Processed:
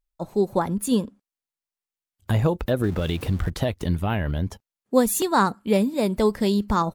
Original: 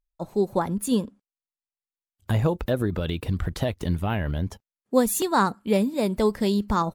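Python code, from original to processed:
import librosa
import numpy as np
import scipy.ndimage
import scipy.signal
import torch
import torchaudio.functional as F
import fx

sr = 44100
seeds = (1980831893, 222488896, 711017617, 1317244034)

y = fx.zero_step(x, sr, step_db=-37.5, at=(2.83, 3.5))
y = y * 10.0 ** (1.5 / 20.0)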